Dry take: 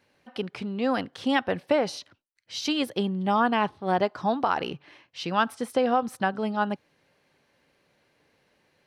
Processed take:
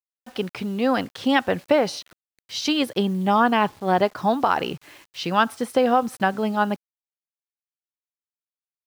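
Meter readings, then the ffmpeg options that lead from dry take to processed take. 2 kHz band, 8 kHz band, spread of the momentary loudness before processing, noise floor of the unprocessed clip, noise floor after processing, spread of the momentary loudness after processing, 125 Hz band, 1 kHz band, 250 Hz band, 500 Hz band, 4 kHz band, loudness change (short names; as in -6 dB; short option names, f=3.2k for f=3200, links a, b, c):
+4.5 dB, +5.0 dB, 12 LU, -69 dBFS, under -85 dBFS, 12 LU, +4.5 dB, +4.5 dB, +4.5 dB, +4.5 dB, +4.5 dB, +4.5 dB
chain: -af "acrusher=bits=8:mix=0:aa=0.000001,volume=4.5dB"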